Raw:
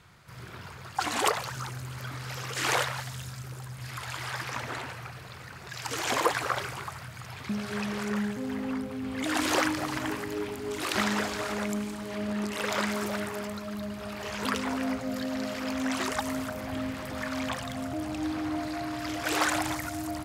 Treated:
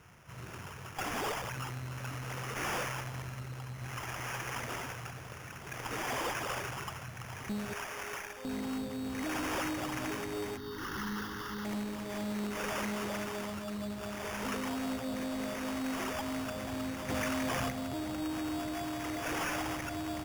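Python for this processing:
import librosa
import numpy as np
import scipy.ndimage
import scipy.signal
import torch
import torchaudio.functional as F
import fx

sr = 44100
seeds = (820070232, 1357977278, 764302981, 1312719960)

y = fx.bessel_highpass(x, sr, hz=670.0, order=6, at=(7.73, 8.45))
y = fx.sample_hold(y, sr, seeds[0], rate_hz=4100.0, jitter_pct=0)
y = fx.tube_stage(y, sr, drive_db=32.0, bias=0.4)
y = fx.fixed_phaser(y, sr, hz=2400.0, stages=6, at=(10.57, 11.65))
y = fx.env_flatten(y, sr, amount_pct=100, at=(17.08, 17.69), fade=0.02)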